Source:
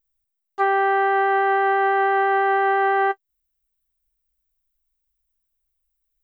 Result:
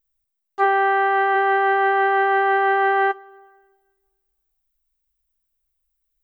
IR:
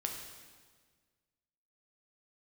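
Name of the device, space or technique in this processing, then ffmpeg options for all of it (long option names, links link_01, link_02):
keyed gated reverb: -filter_complex "[0:a]asplit=3[link_01][link_02][link_03];[1:a]atrim=start_sample=2205[link_04];[link_02][link_04]afir=irnorm=-1:irlink=0[link_05];[link_03]apad=whole_len=274901[link_06];[link_05][link_06]sidechaingate=range=-19dB:threshold=-16dB:ratio=16:detection=peak,volume=-0.5dB[link_07];[link_01][link_07]amix=inputs=2:normalize=0,asplit=3[link_08][link_09][link_10];[link_08]afade=type=out:start_time=0.63:duration=0.02[link_11];[link_09]highpass=300,afade=type=in:start_time=0.63:duration=0.02,afade=type=out:start_time=1.34:duration=0.02[link_12];[link_10]afade=type=in:start_time=1.34:duration=0.02[link_13];[link_11][link_12][link_13]amix=inputs=3:normalize=0"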